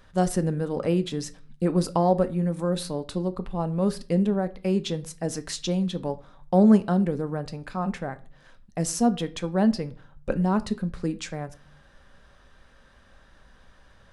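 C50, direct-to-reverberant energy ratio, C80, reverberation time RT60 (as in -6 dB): 19.0 dB, 11.0 dB, 24.0 dB, 0.40 s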